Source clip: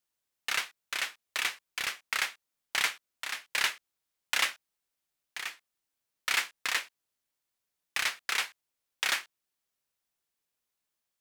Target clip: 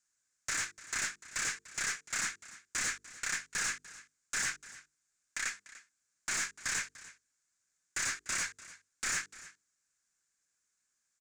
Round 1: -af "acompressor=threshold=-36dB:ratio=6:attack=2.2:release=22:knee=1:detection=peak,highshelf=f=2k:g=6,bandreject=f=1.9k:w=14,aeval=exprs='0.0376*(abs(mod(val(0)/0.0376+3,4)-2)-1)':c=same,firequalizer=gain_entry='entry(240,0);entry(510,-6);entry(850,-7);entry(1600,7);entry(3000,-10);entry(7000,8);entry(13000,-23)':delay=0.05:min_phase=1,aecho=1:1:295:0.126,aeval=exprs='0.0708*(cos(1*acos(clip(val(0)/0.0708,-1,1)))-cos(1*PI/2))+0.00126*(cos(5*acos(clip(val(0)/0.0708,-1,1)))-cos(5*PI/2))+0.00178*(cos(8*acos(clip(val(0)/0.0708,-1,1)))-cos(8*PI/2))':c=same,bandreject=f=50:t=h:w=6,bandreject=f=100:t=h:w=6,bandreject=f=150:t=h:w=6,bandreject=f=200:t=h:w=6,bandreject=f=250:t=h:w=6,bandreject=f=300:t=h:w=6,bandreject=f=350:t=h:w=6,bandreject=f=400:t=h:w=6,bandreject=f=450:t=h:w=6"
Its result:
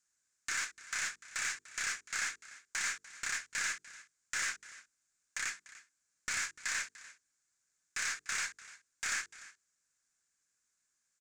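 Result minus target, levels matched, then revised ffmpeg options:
compressor: peak gain reduction +8 dB
-af "acompressor=threshold=-26.5dB:ratio=6:attack=2.2:release=22:knee=1:detection=peak,highshelf=f=2k:g=6,bandreject=f=1.9k:w=14,aeval=exprs='0.0376*(abs(mod(val(0)/0.0376+3,4)-2)-1)':c=same,firequalizer=gain_entry='entry(240,0);entry(510,-6);entry(850,-7);entry(1600,7);entry(3000,-10);entry(7000,8);entry(13000,-23)':delay=0.05:min_phase=1,aecho=1:1:295:0.126,aeval=exprs='0.0708*(cos(1*acos(clip(val(0)/0.0708,-1,1)))-cos(1*PI/2))+0.00126*(cos(5*acos(clip(val(0)/0.0708,-1,1)))-cos(5*PI/2))+0.00178*(cos(8*acos(clip(val(0)/0.0708,-1,1)))-cos(8*PI/2))':c=same,bandreject=f=50:t=h:w=6,bandreject=f=100:t=h:w=6,bandreject=f=150:t=h:w=6,bandreject=f=200:t=h:w=6,bandreject=f=250:t=h:w=6,bandreject=f=300:t=h:w=6,bandreject=f=350:t=h:w=6,bandreject=f=400:t=h:w=6,bandreject=f=450:t=h:w=6"

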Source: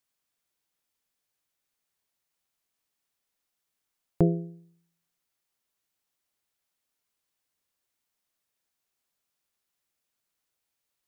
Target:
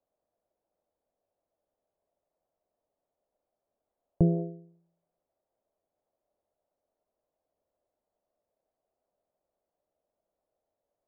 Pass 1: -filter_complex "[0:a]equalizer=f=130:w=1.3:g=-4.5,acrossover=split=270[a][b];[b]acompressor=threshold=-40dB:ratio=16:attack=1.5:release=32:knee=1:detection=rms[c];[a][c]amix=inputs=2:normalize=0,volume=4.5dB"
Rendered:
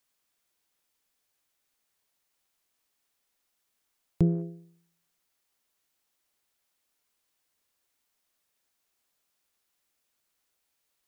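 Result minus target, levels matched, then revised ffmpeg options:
500 Hz band -3.0 dB
-filter_complex "[0:a]equalizer=f=130:w=1.3:g=-4.5,acrossover=split=270[a][b];[b]acompressor=threshold=-40dB:ratio=16:attack=1.5:release=32:knee=1:detection=rms,lowpass=f=620:t=q:w=4.4[c];[a][c]amix=inputs=2:normalize=0,volume=4.5dB"

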